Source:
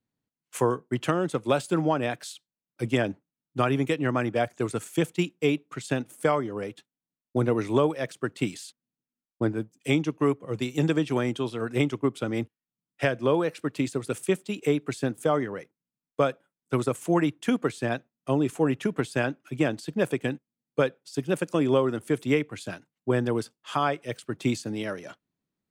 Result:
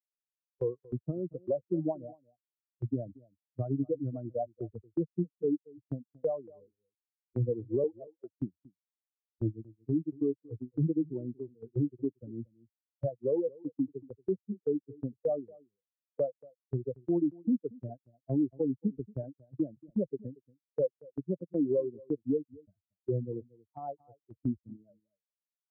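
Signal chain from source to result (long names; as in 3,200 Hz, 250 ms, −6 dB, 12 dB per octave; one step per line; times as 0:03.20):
spectral dynamics exaggerated over time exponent 3
Butterworth low-pass 580 Hz 36 dB per octave
noise gate −54 dBFS, range −9 dB
0:07.84–0:08.39: Bessel high-pass filter 420 Hz, order 2
in parallel at −2 dB: downward compressor, threshold −42 dBFS, peak gain reduction 18.5 dB
on the sum: brickwall limiter −25 dBFS, peak gain reduction 9 dB
on a send: single-tap delay 231 ms −23 dB
on the sum: level +4 dB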